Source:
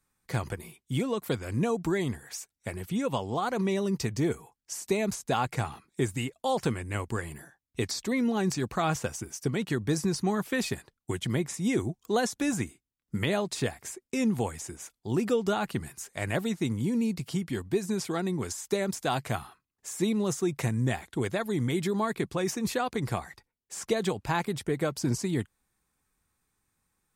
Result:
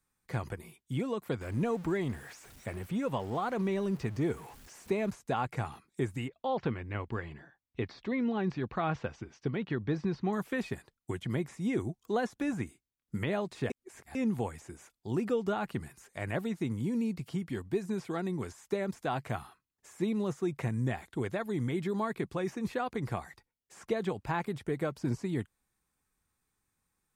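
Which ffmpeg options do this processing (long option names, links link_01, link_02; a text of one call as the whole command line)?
ffmpeg -i in.wav -filter_complex "[0:a]asettb=1/sr,asplit=3[link_01][link_02][link_03];[link_01]atrim=end=1.414[link_04];[link_02]atrim=start=1.41:end=5.1,asetpts=PTS-STARTPTS,afade=type=in:duration=0.004:curve=qsin,afade=type=out:start_time=3.686:duration=0.004:curve=qsin,aeval=exprs='val(0)+0.5*0.00944*sgn(val(0))':channel_layout=same[link_05];[link_03]atrim=start=5.096[link_06];[link_04][link_05]acrossfade=duration=0.004:curve1=hsin:curve2=qsin[link_07];[link_07][link_06]acrossfade=duration=0.004:curve1=qsin:curve2=hsin,asettb=1/sr,asplit=3[link_08][link_09][link_10];[link_08]atrim=end=6.284[link_11];[link_09]atrim=start=6.28:end=10.33,asetpts=PTS-STARTPTS,afade=type=in:duration=0.004:curve=qsin,afade=type=out:start_time=4.046:duration=0.004:curve=qsin,lowpass=frequency=4000:width=0.5412,lowpass=frequency=4000:width=1.3066[link_12];[link_10]atrim=start=10.326[link_13];[link_11][link_12]acrossfade=duration=0.004:curve1=hsin:curve2=qsin[link_14];[link_14][link_13]acrossfade=duration=0.004:curve1=qsin:curve2=hsin,asplit=3[link_15][link_16][link_17];[link_15]atrim=end=13.702[link_18];[link_16]atrim=start=13.698:end=14.152,asetpts=PTS-STARTPTS,areverse[link_19];[link_17]atrim=start=14.148[link_20];[link_18][link_19]acrossfade=duration=0.004:curve1=hsin:curve2=hsin[link_21];[link_21][link_20]acrossfade=duration=0.004:curve1=hsin:curve2=hsin,acrossover=split=2800[link_22][link_23];[link_23]acompressor=threshold=-51dB:ratio=4:attack=1:release=60[link_24];[link_22][link_24]amix=inputs=2:normalize=0,volume=-4dB" out.wav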